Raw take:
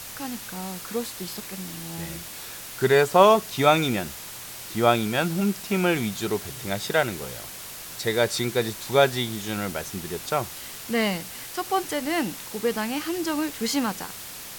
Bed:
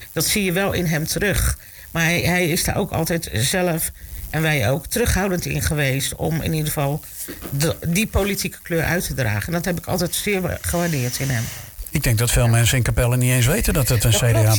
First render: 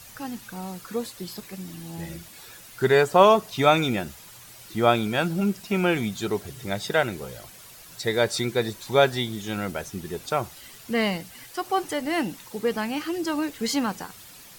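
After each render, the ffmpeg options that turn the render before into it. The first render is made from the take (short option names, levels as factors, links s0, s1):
-af "afftdn=nr=10:nf=-39"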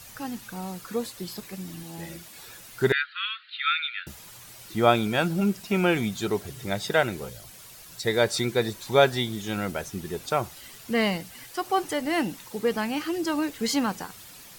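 -filter_complex "[0:a]asettb=1/sr,asplit=3[s0][s1][s2];[s0]atrim=end=1.834[s3];[s1]atrim=start=1.83:end=2.35,asetpts=PTS-STARTPTS,afade=t=in:d=0.004:c=qsin,afade=t=out:st=0.516:d=0.004:c=qsin,lowshelf=f=130:g=-11.5[s4];[s2]atrim=start=2.346[s5];[s3][s4]acrossfade=d=0.004:c1=hsin:c2=qsin[s6];[s6][s5]acrossfade=d=0.004:c1=qsin:c2=hsin,asettb=1/sr,asplit=3[s7][s8][s9];[s7]atrim=end=2.924[s10];[s8]atrim=start=2.92:end=4.07,asetpts=PTS-STARTPTS,afade=t=in:d=0.004:c=qsin,afade=t=out:st=1.146:d=0.004:c=qsin,asuperpass=centerf=2400:order=20:qfactor=0.8[s11];[s9]atrim=start=4.066[s12];[s10][s11]acrossfade=d=0.004:c1=hsin:c2=qsin[s13];[s13][s12]acrossfade=d=0.004:c1=qsin:c2=hsin,asettb=1/sr,asplit=3[s14][s15][s16];[s14]atrim=end=7.294[s17];[s15]atrim=start=7.29:end=8.05,asetpts=PTS-STARTPTS,afade=t=in:d=0.004:c=qsin,afade=t=out:st=0.756:d=0.004:c=qsin,acrossover=split=180|3000[s18][s19][s20];[s19]acompressor=threshold=0.00224:ratio=2:attack=3.2:release=140:knee=2.83:detection=peak[s21];[s18][s21][s20]amix=inputs=3:normalize=0[s22];[s16]atrim=start=8.046[s23];[s17][s22]acrossfade=d=0.004:c1=hsin:c2=qsin[s24];[s24][s23]acrossfade=d=0.004:c1=qsin:c2=hsin"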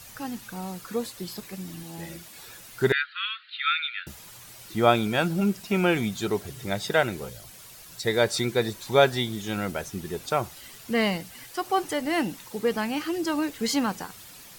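-af anull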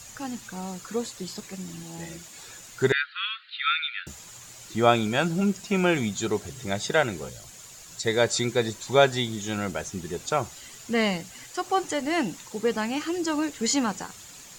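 -filter_complex "[0:a]acrossover=split=8100[s0][s1];[s1]acompressor=threshold=0.00178:ratio=4:attack=1:release=60[s2];[s0][s2]amix=inputs=2:normalize=0,equalizer=f=7000:t=o:w=0.32:g=12.5"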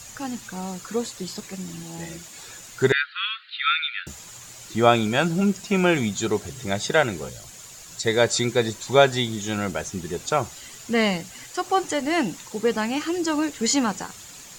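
-af "volume=1.41,alimiter=limit=0.708:level=0:latency=1"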